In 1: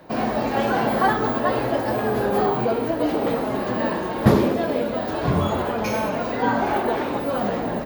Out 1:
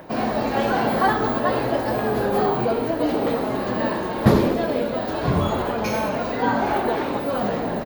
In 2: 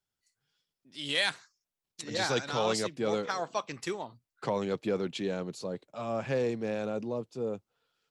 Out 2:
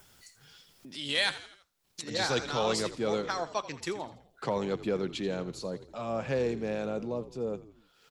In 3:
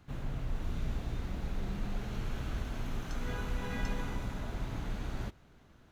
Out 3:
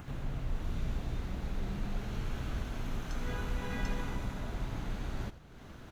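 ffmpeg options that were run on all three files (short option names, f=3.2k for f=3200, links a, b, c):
-filter_complex "[0:a]adynamicequalizer=threshold=0.00224:dfrequency=4200:dqfactor=5.5:tfrequency=4200:tqfactor=5.5:attack=5:release=100:ratio=0.375:range=1.5:mode=boostabove:tftype=bell,acompressor=mode=upward:threshold=-37dB:ratio=2.5,asplit=5[a][b][c][d][e];[b]adelay=83,afreqshift=-56,volume=-15dB[f];[c]adelay=166,afreqshift=-112,volume=-21.4dB[g];[d]adelay=249,afreqshift=-168,volume=-27.8dB[h];[e]adelay=332,afreqshift=-224,volume=-34.1dB[i];[a][f][g][h][i]amix=inputs=5:normalize=0"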